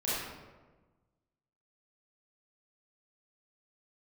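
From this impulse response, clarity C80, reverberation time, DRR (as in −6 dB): 0.5 dB, 1.3 s, −10.5 dB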